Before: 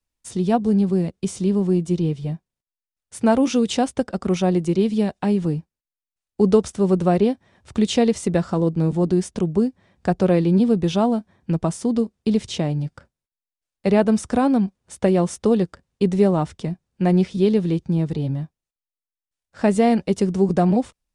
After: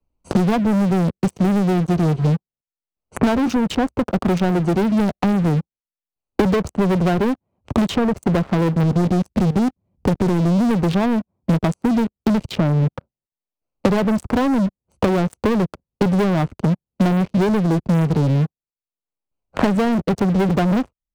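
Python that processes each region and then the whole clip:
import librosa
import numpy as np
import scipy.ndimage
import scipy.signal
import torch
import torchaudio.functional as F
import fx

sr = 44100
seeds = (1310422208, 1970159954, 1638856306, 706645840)

y = fx.chain(x, sr, fx.low_shelf(hz=290.0, db=10.5),
    fx.level_steps(step_db=19),
    fx.doppler_dist(depth_ms=0.56), at=(8.83, 10.71))
y = fx.wiener(y, sr, points=25)
y = fx.leveller(y, sr, passes=5)
y = fx.band_squash(y, sr, depth_pct=100)
y = F.gain(torch.from_numpy(y), -9.0).numpy()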